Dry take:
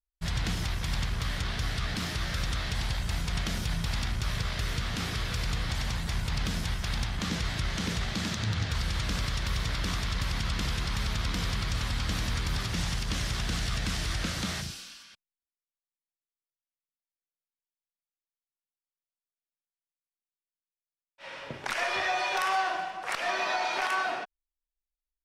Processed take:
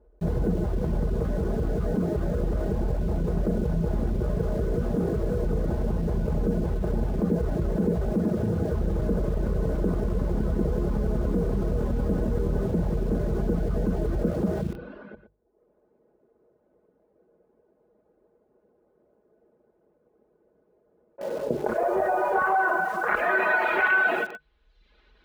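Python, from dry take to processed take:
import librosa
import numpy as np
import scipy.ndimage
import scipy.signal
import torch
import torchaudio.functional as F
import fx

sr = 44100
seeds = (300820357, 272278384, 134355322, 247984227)

p1 = fx.tracing_dist(x, sr, depth_ms=0.065)
p2 = fx.dereverb_blind(p1, sr, rt60_s=0.54)
p3 = scipy.signal.sosfilt(scipy.signal.butter(4, 41.0, 'highpass', fs=sr, output='sos'), p2)
p4 = fx.high_shelf(p3, sr, hz=3200.0, db=-10.0)
p5 = fx.hum_notches(p4, sr, base_hz=50, count=3)
p6 = p5 + 0.54 * np.pad(p5, (int(4.8 * sr / 1000.0), 0))[:len(p5)]
p7 = fx.small_body(p6, sr, hz=(340.0, 480.0, 1500.0, 4000.0), ring_ms=50, db=10)
p8 = fx.filter_sweep_lowpass(p7, sr, from_hz=530.0, to_hz=3600.0, start_s=21.56, end_s=24.46, q=1.7)
p9 = fx.air_absorb(p8, sr, metres=170.0)
p10 = p9 + 10.0 ** (-22.5 / 20.0) * np.pad(p9, (int(118 * sr / 1000.0), 0))[:len(p9)]
p11 = fx.quant_dither(p10, sr, seeds[0], bits=8, dither='none')
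p12 = p10 + (p11 * librosa.db_to_amplitude(-10.0))
y = fx.env_flatten(p12, sr, amount_pct=50)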